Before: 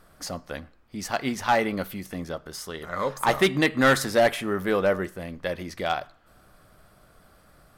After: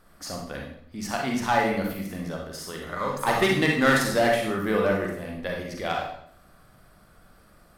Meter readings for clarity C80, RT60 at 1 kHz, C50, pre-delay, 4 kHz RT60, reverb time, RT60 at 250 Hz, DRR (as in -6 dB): 7.5 dB, 0.60 s, 2.5 dB, 37 ms, 0.55 s, 0.60 s, 0.75 s, -0.5 dB